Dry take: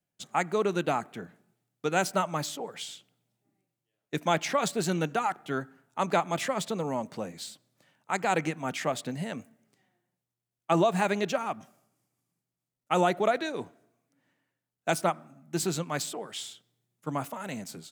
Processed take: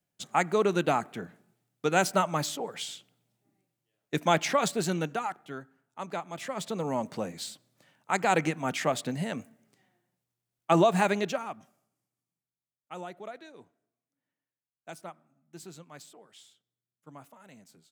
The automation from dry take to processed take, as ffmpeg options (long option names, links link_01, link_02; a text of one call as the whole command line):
ffmpeg -i in.wav -af "volume=13.5dB,afade=type=out:start_time=4.47:duration=1.12:silence=0.266073,afade=type=in:start_time=6.36:duration=0.69:silence=0.266073,afade=type=out:start_time=11.01:duration=0.5:silence=0.398107,afade=type=out:start_time=11.51:duration=1.49:silence=0.298538" out.wav